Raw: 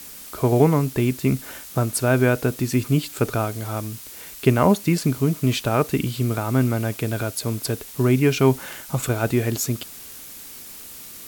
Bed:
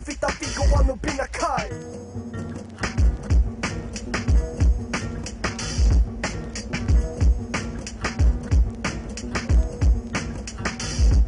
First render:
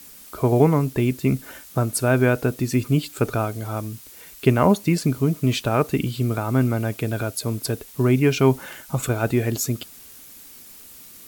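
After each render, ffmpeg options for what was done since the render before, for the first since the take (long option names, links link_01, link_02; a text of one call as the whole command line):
ffmpeg -i in.wav -af "afftdn=noise_reduction=6:noise_floor=-40" out.wav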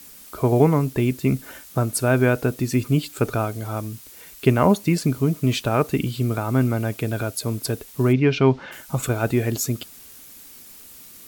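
ffmpeg -i in.wav -filter_complex "[0:a]asplit=3[link_01][link_02][link_03];[link_01]afade=type=out:start_time=8.12:duration=0.02[link_04];[link_02]lowpass=frequency=4700:width=0.5412,lowpass=frequency=4700:width=1.3066,afade=type=in:start_time=8.12:duration=0.02,afade=type=out:start_time=8.71:duration=0.02[link_05];[link_03]afade=type=in:start_time=8.71:duration=0.02[link_06];[link_04][link_05][link_06]amix=inputs=3:normalize=0" out.wav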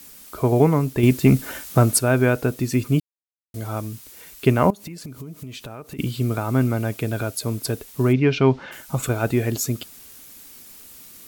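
ffmpeg -i in.wav -filter_complex "[0:a]asettb=1/sr,asplit=3[link_01][link_02][link_03];[link_01]atrim=end=1.034[link_04];[link_02]atrim=start=1.03:end=1.99,asetpts=PTS-STARTPTS,afade=type=in:duration=0.004:curve=qsin,afade=type=out:start_time=0.956:duration=0.004:curve=qsin,acontrast=69[link_05];[link_03]atrim=start=1.986[link_06];[link_04][link_05]acrossfade=duration=0.004:curve1=hsin:curve2=qsin[link_07];[link_07][link_06]acrossfade=duration=0.004:curve1=qsin:curve2=hsin,asettb=1/sr,asplit=3[link_08][link_09][link_10];[link_08]atrim=end=4.704[link_11];[link_09]atrim=start=4.7:end=5.99,asetpts=PTS-STARTPTS,afade=type=in:duration=0.004:curve=qsin,afade=type=out:start_time=1.286:duration=0.004:curve=qsin,acompressor=threshold=-32dB:ratio=12:attack=3.2:release=140:knee=1:detection=peak[link_12];[link_10]atrim=start=5.986[link_13];[link_11][link_12]acrossfade=duration=0.004:curve1=hsin:curve2=qsin[link_14];[link_14][link_13]acrossfade=duration=0.004:curve1=qsin:curve2=hsin,asplit=3[link_15][link_16][link_17];[link_15]atrim=end=3,asetpts=PTS-STARTPTS,afade=type=out:start_time=2.996:duration=0.004:curve=hsin[link_18];[link_16]atrim=start=3:end=3.54,asetpts=PTS-STARTPTS,volume=0[link_19];[link_17]atrim=start=3.54,asetpts=PTS-STARTPTS,afade=type=in:duration=0.004:curve=hsin[link_20];[link_18][link_19][link_20]concat=n=3:v=0:a=1" out.wav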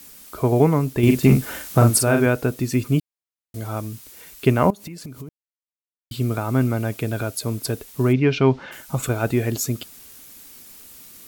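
ffmpeg -i in.wav -filter_complex "[0:a]asettb=1/sr,asplit=3[link_01][link_02][link_03];[link_01]atrim=end=1.034[link_04];[link_02]atrim=start=1.03:end=2.26,asetpts=PTS-STARTPTS,afade=type=in:duration=0.004:curve=qsin,afade=type=out:start_time=1.226:duration=0.004:curve=qsin,asplit=2[link_05][link_06];[link_06]adelay=43,volume=-5dB[link_07];[link_05][link_07]amix=inputs=2:normalize=0,atrim=end_sample=54243[link_08];[link_03]atrim=start=2.256[link_09];[link_04][link_08]acrossfade=duration=0.004:curve1=hsin:curve2=qsin[link_10];[link_10][link_09]acrossfade=duration=0.004:curve1=qsin:curve2=hsin,asplit=3[link_11][link_12][link_13];[link_11]atrim=end=5.29,asetpts=PTS-STARTPTS,afade=type=out:start_time=5.286:duration=0.004:curve=hsin[link_14];[link_12]atrim=start=5.29:end=6.11,asetpts=PTS-STARTPTS,volume=0[link_15];[link_13]atrim=start=6.11,asetpts=PTS-STARTPTS,afade=type=in:duration=0.004:curve=hsin[link_16];[link_14][link_15][link_16]concat=n=3:v=0:a=1" out.wav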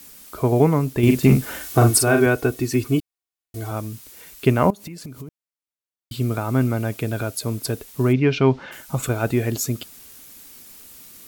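ffmpeg -i in.wav -filter_complex "[0:a]asettb=1/sr,asplit=3[link_01][link_02][link_03];[link_01]atrim=end=1.614[link_04];[link_02]atrim=start=1.61:end=3.71,asetpts=PTS-STARTPTS,afade=type=in:duration=0.004:curve=qsin,afade=type=out:start_time=2.096:duration=0.004:curve=qsin,aecho=1:1:2.7:0.65,atrim=end_sample=92610[link_05];[link_03]atrim=start=3.706[link_06];[link_04][link_05]acrossfade=duration=0.004:curve1=hsin:curve2=qsin[link_07];[link_07][link_06]acrossfade=duration=0.004:curve1=qsin:curve2=hsin" out.wav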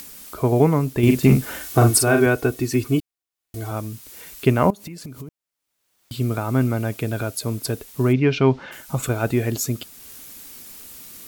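ffmpeg -i in.wav -af "acompressor=mode=upward:threshold=-34dB:ratio=2.5" out.wav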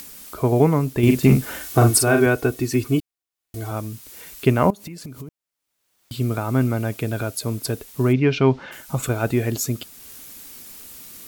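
ffmpeg -i in.wav -af anull out.wav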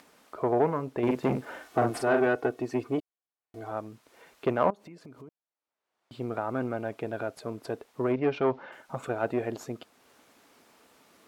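ffmpeg -i in.wav -af "aeval=exprs='(tanh(4.47*val(0)+0.6)-tanh(0.6))/4.47':channel_layout=same,bandpass=frequency=720:width_type=q:width=0.86:csg=0" out.wav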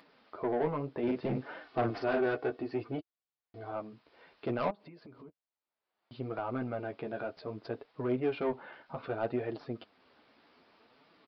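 ffmpeg -i in.wav -af "aresample=11025,asoftclip=type=tanh:threshold=-20.5dB,aresample=44100,flanger=delay=5.9:depth=8.7:regen=-16:speed=0.63:shape=triangular" out.wav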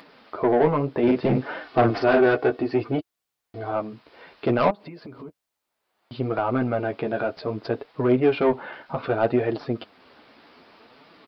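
ffmpeg -i in.wav -af "volume=12dB" out.wav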